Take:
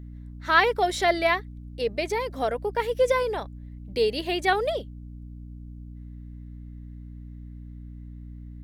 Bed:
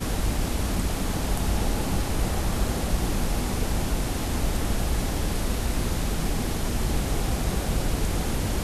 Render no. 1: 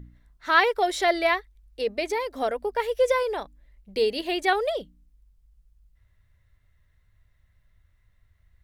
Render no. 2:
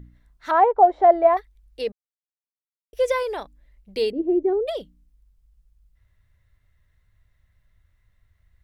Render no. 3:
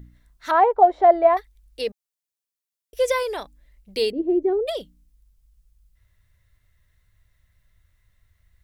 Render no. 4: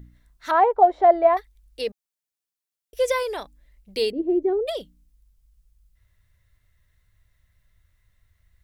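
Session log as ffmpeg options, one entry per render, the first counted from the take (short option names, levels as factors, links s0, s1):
-af "bandreject=f=60:t=h:w=4,bandreject=f=120:t=h:w=4,bandreject=f=180:t=h:w=4,bandreject=f=240:t=h:w=4,bandreject=f=300:t=h:w=4"
-filter_complex "[0:a]asettb=1/sr,asplit=3[s0][s1][s2];[s0]atrim=end=0.514[s3];[s1]atrim=start=0.51:end=1.37,asetpts=PTS-STARTPTS,afade=t=in:d=0.004:c=qsin,afade=t=out:st=0.856:d=0.004:c=qsin,lowpass=f=810:t=q:w=4[s4];[s2]atrim=start=1.366[s5];[s3][s4]acrossfade=d=0.004:c1=hsin:c2=qsin[s6];[s6][s5]acrossfade=d=0.004:c1=qsin:c2=hsin,asplit=3[s7][s8][s9];[s7]afade=t=out:st=4.1:d=0.02[s10];[s8]lowpass=f=360:t=q:w=3,afade=t=in:st=4.1:d=0.02,afade=t=out:st=4.67:d=0.02[s11];[s9]afade=t=in:st=4.67:d=0.02[s12];[s10][s11][s12]amix=inputs=3:normalize=0,asplit=3[s13][s14][s15];[s13]atrim=end=1.92,asetpts=PTS-STARTPTS,afade=t=out:st=1.916:d=0.004:c=hsin[s16];[s14]atrim=start=1.92:end=2.93,asetpts=PTS-STARTPTS,volume=0[s17];[s15]atrim=start=2.93,asetpts=PTS-STARTPTS,afade=t=in:d=0.004:c=hsin[s18];[s16][s17][s18]concat=n=3:v=0:a=1"
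-af "highshelf=f=3500:g=8.5,bandreject=f=830:w=22"
-af "volume=0.891"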